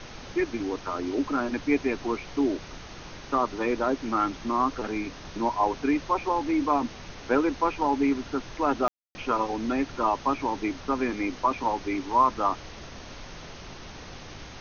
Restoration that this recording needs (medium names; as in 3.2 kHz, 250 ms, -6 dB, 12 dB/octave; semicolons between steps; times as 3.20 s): room tone fill 8.88–9.15 s; noise print and reduce 29 dB